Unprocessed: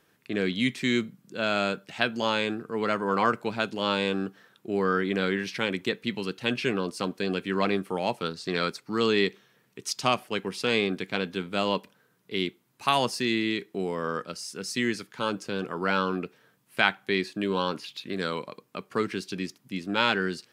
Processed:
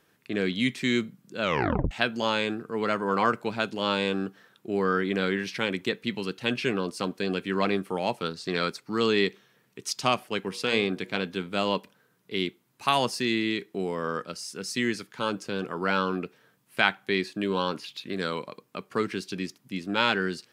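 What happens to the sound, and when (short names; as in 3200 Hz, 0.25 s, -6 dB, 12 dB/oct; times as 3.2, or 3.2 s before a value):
1.42 tape stop 0.49 s
10.41–11.23 de-hum 120.2 Hz, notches 10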